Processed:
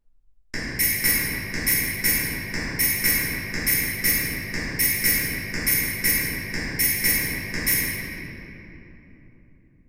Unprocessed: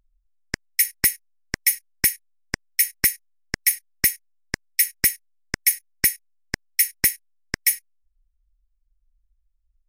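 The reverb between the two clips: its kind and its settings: simulated room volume 200 m³, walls hard, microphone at 2.6 m; trim -10 dB

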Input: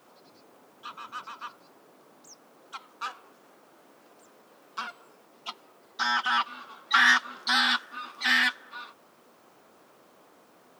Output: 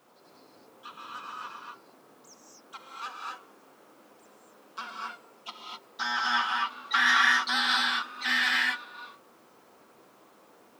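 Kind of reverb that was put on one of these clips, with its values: gated-style reverb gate 280 ms rising, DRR -2 dB; trim -4 dB

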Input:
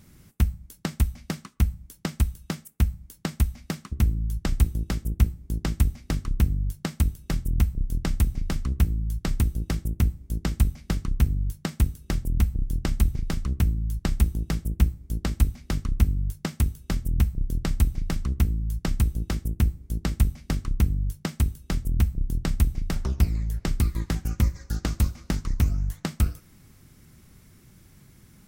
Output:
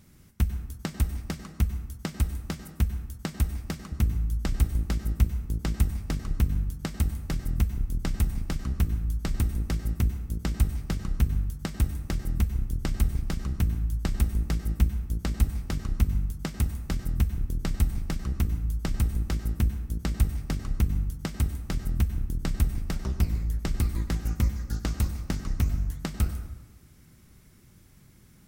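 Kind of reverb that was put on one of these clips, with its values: plate-style reverb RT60 1.1 s, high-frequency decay 0.55×, pre-delay 85 ms, DRR 9.5 dB; trim -3 dB

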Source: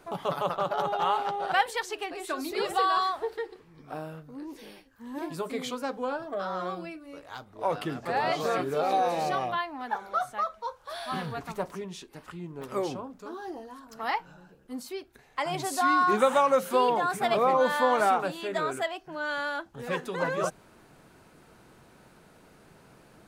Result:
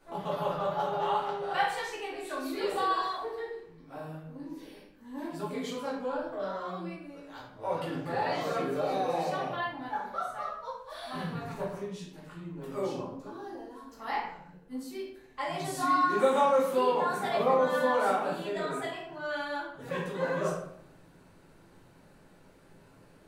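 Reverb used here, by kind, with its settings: simulated room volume 150 m³, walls mixed, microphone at 2.4 m; trim -12.5 dB

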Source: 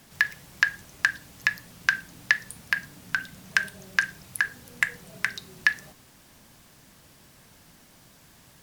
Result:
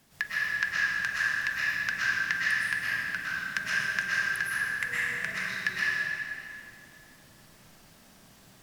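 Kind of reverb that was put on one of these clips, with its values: algorithmic reverb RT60 2.4 s, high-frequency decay 0.85×, pre-delay 85 ms, DRR -8.5 dB; trim -9.5 dB

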